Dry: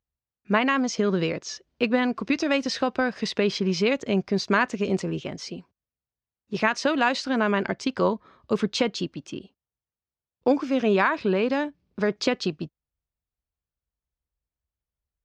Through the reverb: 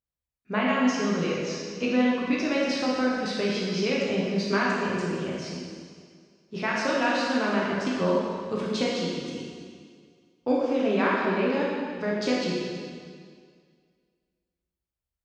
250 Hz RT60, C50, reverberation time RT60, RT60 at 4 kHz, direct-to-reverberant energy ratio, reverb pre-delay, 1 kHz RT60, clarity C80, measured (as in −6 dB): 2.0 s, −1.5 dB, 2.0 s, 1.9 s, −5.5 dB, 5 ms, 2.0 s, 0.5 dB